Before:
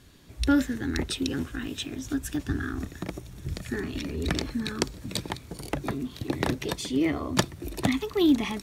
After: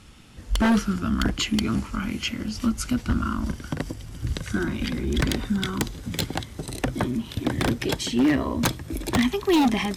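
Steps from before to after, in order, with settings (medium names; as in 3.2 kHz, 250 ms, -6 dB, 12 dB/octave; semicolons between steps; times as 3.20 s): gliding tape speed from 78% -> 95%; wavefolder -19 dBFS; trim +5.5 dB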